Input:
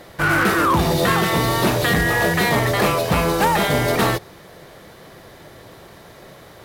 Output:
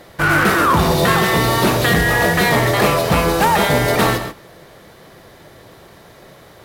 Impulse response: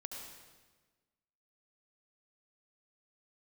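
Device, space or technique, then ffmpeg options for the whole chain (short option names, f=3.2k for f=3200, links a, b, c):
keyed gated reverb: -filter_complex "[0:a]asplit=3[a][b][c];[1:a]atrim=start_sample=2205[d];[b][d]afir=irnorm=-1:irlink=0[e];[c]apad=whole_len=293221[f];[e][f]sidechaingate=range=-16dB:threshold=-36dB:ratio=16:detection=peak,volume=0dB[g];[a][g]amix=inputs=2:normalize=0,volume=-1dB"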